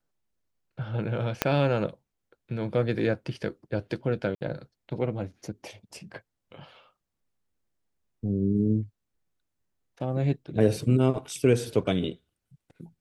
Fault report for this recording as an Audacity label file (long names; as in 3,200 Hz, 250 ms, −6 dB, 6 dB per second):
1.420000	1.420000	click −6 dBFS
4.350000	4.410000	drop-out 59 ms